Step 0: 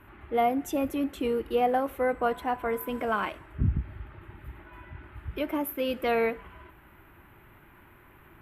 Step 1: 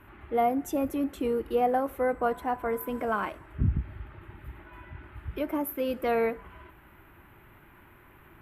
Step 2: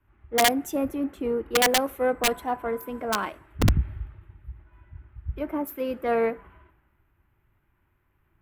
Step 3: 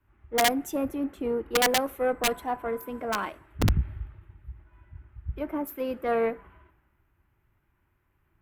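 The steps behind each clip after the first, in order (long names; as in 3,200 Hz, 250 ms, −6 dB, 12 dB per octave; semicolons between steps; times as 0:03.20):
dynamic equaliser 3,100 Hz, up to −7 dB, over −50 dBFS, Q 1.1
phase distortion by the signal itself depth 0.059 ms; wrap-around overflow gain 17.5 dB; multiband upward and downward expander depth 70%; level +1.5 dB
tube saturation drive 9 dB, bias 0.45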